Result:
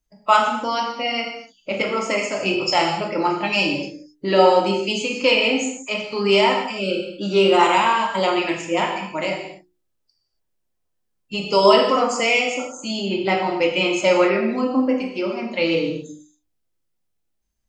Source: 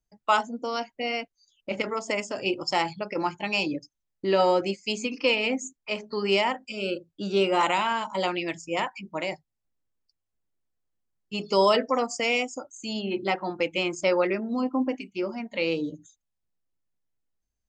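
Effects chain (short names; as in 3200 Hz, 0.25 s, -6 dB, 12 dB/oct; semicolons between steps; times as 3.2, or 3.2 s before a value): bin magnitudes rounded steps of 15 dB; notches 60/120/180/240/300/360/420 Hz; non-linear reverb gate 0.3 s falling, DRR 0 dB; gain +5 dB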